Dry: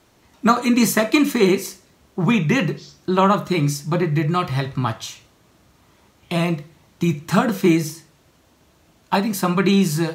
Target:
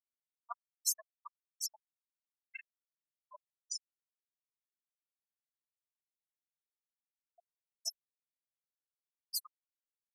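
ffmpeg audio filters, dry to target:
-filter_complex "[0:a]bandreject=f=60:t=h:w=6,bandreject=f=120:t=h:w=6,bandreject=f=180:t=h:w=6,bandreject=f=240:t=h:w=6,asplit=2[a][b];[b]adelay=749,lowpass=f=4.5k:p=1,volume=-3.5dB,asplit=2[c][d];[d]adelay=749,lowpass=f=4.5k:p=1,volume=0.55,asplit=2[e][f];[f]adelay=749,lowpass=f=4.5k:p=1,volume=0.55,asplit=2[g][h];[h]adelay=749,lowpass=f=4.5k:p=1,volume=0.55,asplit=2[i][j];[j]adelay=749,lowpass=f=4.5k:p=1,volume=0.55,asplit=2[k][l];[l]adelay=749,lowpass=f=4.5k:p=1,volume=0.55,asplit=2[m][n];[n]adelay=749,lowpass=f=4.5k:p=1,volume=0.55,asplit=2[o][p];[p]adelay=749,lowpass=f=4.5k:p=1,volume=0.55[q];[a][c][e][g][i][k][m][o][q]amix=inputs=9:normalize=0,areverse,acompressor=threshold=-28dB:ratio=12,areverse,aderivative,aecho=1:1:1.9:0.51,asplit=2[r][s];[s]adynamicsmooth=sensitivity=7:basefreq=2.9k,volume=0.5dB[t];[r][t]amix=inputs=2:normalize=0,aeval=exprs='val(0)*gte(abs(val(0)),0.0168)':c=same,aphaser=in_gain=1:out_gain=1:delay=3:decay=0.25:speed=0.44:type=sinusoidal,afftfilt=real='re*gte(hypot(re,im),0.0251)':imag='im*gte(hypot(re,im),0.0251)':win_size=1024:overlap=0.75,equalizer=f=4.4k:t=o:w=0.8:g=12.5,volume=3dB"

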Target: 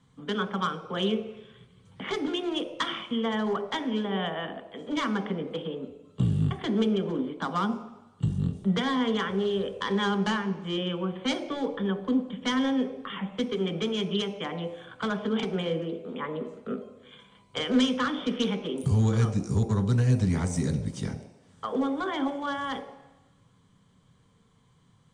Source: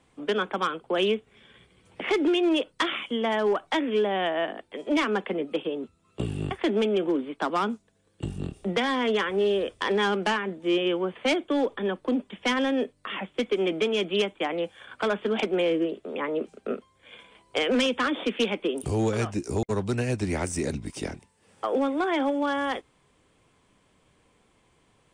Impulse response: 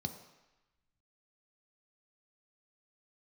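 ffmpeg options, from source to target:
-filter_complex "[0:a]asplit=2[a][b];[1:a]atrim=start_sample=2205,highshelf=f=5.4k:g=7.5[c];[b][c]afir=irnorm=-1:irlink=0,volume=-2.5dB[d];[a][d]amix=inputs=2:normalize=0,volume=-3dB"

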